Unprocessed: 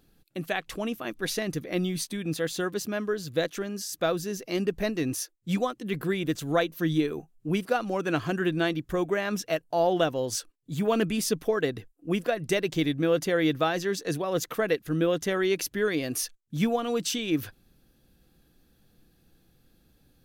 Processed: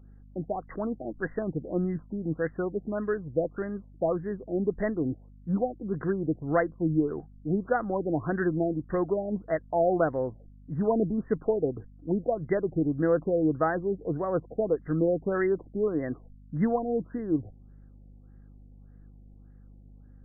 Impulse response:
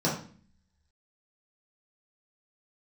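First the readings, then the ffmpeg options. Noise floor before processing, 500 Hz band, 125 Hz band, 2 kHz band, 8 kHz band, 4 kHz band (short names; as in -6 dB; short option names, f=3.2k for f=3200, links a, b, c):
-67 dBFS, 0.0 dB, 0.0 dB, -6.0 dB, under -40 dB, under -40 dB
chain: -af "aeval=exprs='val(0)+0.00316*(sin(2*PI*50*n/s)+sin(2*PI*2*50*n/s)/2+sin(2*PI*3*50*n/s)/3+sin(2*PI*4*50*n/s)/4+sin(2*PI*5*50*n/s)/5)':c=same,afftfilt=real='re*lt(b*sr/1024,790*pow(2100/790,0.5+0.5*sin(2*PI*1.7*pts/sr)))':imag='im*lt(b*sr/1024,790*pow(2100/790,0.5+0.5*sin(2*PI*1.7*pts/sr)))':win_size=1024:overlap=0.75"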